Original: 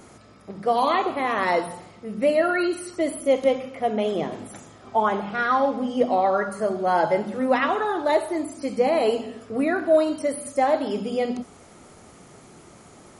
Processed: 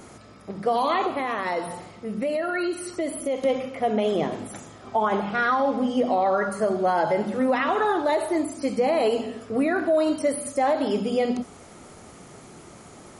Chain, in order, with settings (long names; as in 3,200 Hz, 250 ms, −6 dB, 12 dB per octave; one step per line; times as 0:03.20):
brickwall limiter −16.5 dBFS, peak gain reduction 8 dB
0:01.07–0:03.44: downward compressor 2 to 1, threshold −29 dBFS, peak gain reduction 5.5 dB
level +2.5 dB